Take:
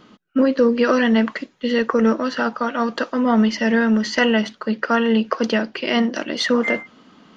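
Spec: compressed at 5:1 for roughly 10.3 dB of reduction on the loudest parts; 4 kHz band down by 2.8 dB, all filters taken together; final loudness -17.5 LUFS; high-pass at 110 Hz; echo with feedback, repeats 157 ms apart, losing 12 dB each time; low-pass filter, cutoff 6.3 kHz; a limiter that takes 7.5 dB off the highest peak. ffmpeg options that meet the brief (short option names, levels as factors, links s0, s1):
-af "highpass=110,lowpass=6300,equalizer=f=4000:t=o:g=-3.5,acompressor=threshold=0.0631:ratio=5,alimiter=limit=0.119:level=0:latency=1,aecho=1:1:157|314|471:0.251|0.0628|0.0157,volume=3.55"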